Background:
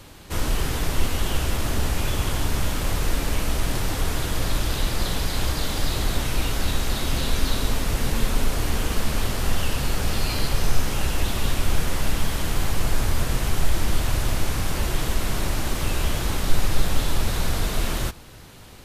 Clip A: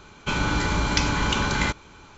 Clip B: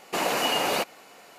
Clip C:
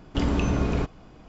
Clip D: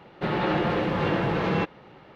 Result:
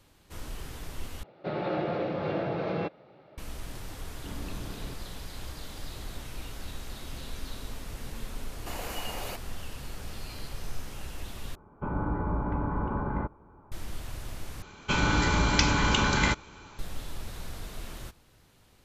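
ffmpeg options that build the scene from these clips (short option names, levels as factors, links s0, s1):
-filter_complex "[1:a]asplit=2[s0][s1];[0:a]volume=0.158[s2];[4:a]highpass=100,equalizer=f=210:t=q:w=4:g=-4,equalizer=f=620:t=q:w=4:g=8,equalizer=f=990:t=q:w=4:g=-7,equalizer=f=1800:t=q:w=4:g=-7,equalizer=f=3000:t=q:w=4:g=-7,lowpass=f=5200:w=0.5412,lowpass=f=5200:w=1.3066[s3];[2:a]highshelf=f=10000:g=9.5[s4];[s0]lowpass=f=1100:w=0.5412,lowpass=f=1100:w=1.3066[s5];[s2]asplit=4[s6][s7][s8][s9];[s6]atrim=end=1.234[s10];[s3]atrim=end=2.15,asetpts=PTS-STARTPTS,volume=0.501[s11];[s7]atrim=start=3.376:end=11.554[s12];[s5]atrim=end=2.17,asetpts=PTS-STARTPTS,volume=0.562[s13];[s8]atrim=start=13.716:end=14.624[s14];[s1]atrim=end=2.17,asetpts=PTS-STARTPTS,volume=0.891[s15];[s9]atrim=start=16.786[s16];[3:a]atrim=end=1.28,asetpts=PTS-STARTPTS,volume=0.133,afade=t=in:d=0.004:c=hsin,afade=t=out:st=1.276:d=0.004:c=hsin,adelay=180369S[s17];[s4]atrim=end=1.38,asetpts=PTS-STARTPTS,volume=0.2,afade=t=in:d=0.004:c=hsin,afade=t=out:st=1.376:d=0.004:c=hsin,adelay=8530[s18];[s10][s11]acrossfade=d=0.004:c1=hsin:c2=hsin[s19];[s19][s12]acrossfade=d=0.004:c1=hsin:c2=hsin[s20];[s20][s13]acrossfade=d=0.004:c1=hsin:c2=hsin[s21];[s21][s14]acrossfade=d=0.004:c1=hsin:c2=hsin[s22];[s22][s15]acrossfade=d=0.004:c1=hsin:c2=hsin[s23];[s23][s16]acrossfade=d=0.004:c1=hsin:c2=hsin[s24];[s24][s17][s18]amix=inputs=3:normalize=0"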